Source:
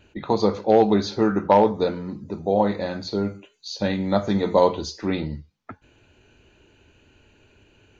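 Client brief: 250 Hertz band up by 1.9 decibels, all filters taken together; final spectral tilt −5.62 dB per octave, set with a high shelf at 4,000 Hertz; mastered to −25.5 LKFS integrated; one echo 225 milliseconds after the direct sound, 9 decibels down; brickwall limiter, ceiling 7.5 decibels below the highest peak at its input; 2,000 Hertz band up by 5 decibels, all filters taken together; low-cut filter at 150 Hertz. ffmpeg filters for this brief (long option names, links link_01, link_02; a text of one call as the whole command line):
ffmpeg -i in.wav -af "highpass=150,equalizer=frequency=250:width_type=o:gain=3.5,equalizer=frequency=2000:width_type=o:gain=8,highshelf=frequency=4000:gain=-9,alimiter=limit=-9dB:level=0:latency=1,aecho=1:1:225:0.355,volume=-3dB" out.wav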